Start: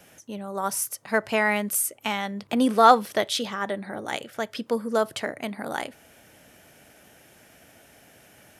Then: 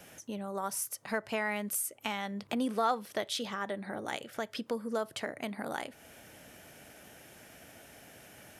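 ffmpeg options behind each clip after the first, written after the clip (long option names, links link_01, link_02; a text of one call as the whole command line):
ffmpeg -i in.wav -af "acompressor=threshold=-38dB:ratio=2" out.wav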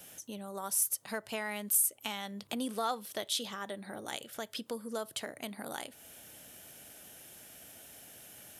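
ffmpeg -i in.wav -af "aexciter=amount=2.8:drive=2.7:freq=3000,volume=-4.5dB" out.wav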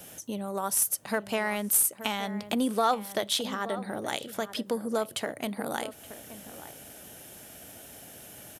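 ffmpeg -i in.wav -filter_complex "[0:a]asplit=2[link_01][link_02];[link_02]adynamicsmooth=sensitivity=4.5:basefreq=1500,volume=-3dB[link_03];[link_01][link_03]amix=inputs=2:normalize=0,asplit=2[link_04][link_05];[link_05]adelay=874.6,volume=-13dB,highshelf=frequency=4000:gain=-19.7[link_06];[link_04][link_06]amix=inputs=2:normalize=0,volume=4.5dB" out.wav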